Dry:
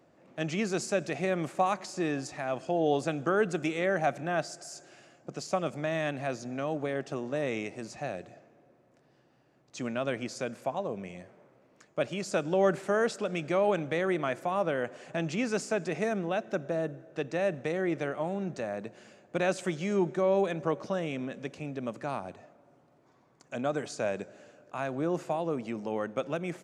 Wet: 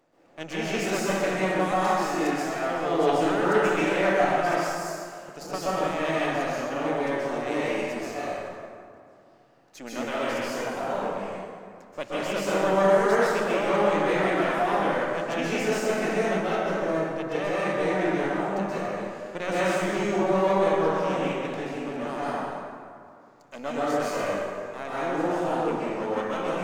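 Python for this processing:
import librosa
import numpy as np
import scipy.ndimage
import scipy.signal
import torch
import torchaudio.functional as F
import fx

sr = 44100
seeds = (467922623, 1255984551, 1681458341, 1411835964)

y = np.where(x < 0.0, 10.0 ** (-12.0 / 20.0) * x, x)
y = fx.low_shelf(y, sr, hz=150.0, db=-11.0)
y = fx.rev_plate(y, sr, seeds[0], rt60_s=2.2, hf_ratio=0.55, predelay_ms=115, drr_db=-9.0)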